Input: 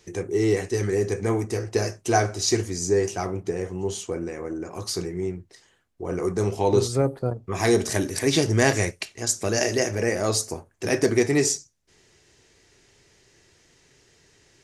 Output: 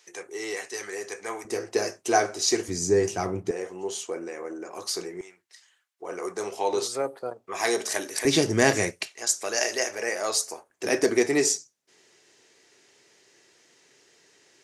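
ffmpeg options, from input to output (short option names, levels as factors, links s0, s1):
-af "asetnsamples=n=441:p=0,asendcmd='1.45 highpass f 320;2.68 highpass f 100;3.51 highpass f 420;5.21 highpass f 1400;6.02 highpass f 570;8.25 highpass f 170;9.08 highpass f 630;10.7 highpass f 290',highpass=820"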